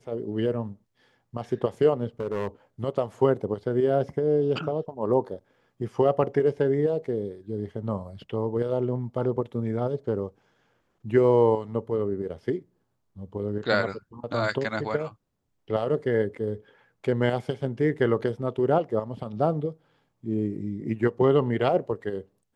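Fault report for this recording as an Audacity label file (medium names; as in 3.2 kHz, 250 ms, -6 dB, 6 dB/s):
2.200000	2.470000	clipped -24.5 dBFS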